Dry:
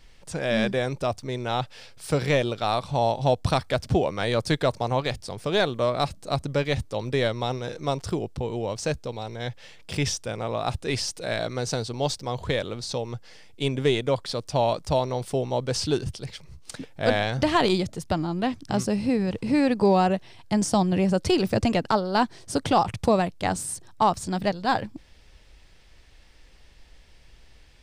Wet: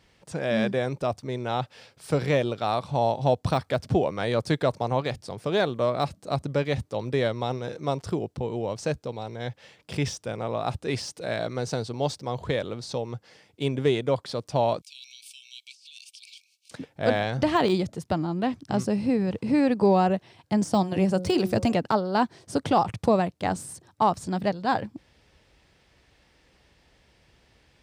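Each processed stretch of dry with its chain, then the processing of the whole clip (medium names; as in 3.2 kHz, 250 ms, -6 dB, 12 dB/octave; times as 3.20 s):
14.81–16.71 s: brick-wall FIR high-pass 2.2 kHz + compressor with a negative ratio -43 dBFS
20.74–21.75 s: treble shelf 4.8 kHz +7 dB + de-hum 181.6 Hz, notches 8
whole clip: treble shelf 2 kHz -6 dB; de-esser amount 70%; high-pass 91 Hz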